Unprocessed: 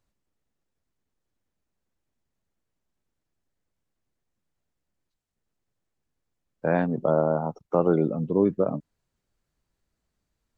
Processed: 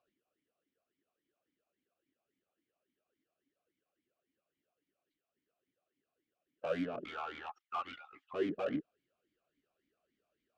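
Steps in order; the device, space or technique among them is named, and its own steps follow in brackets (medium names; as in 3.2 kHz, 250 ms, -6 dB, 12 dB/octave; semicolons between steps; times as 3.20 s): 7.04–8.34 s: steep high-pass 840 Hz 96 dB/octave; talk box (valve stage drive 40 dB, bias 0.75; talking filter a-i 3.6 Hz); trim +16.5 dB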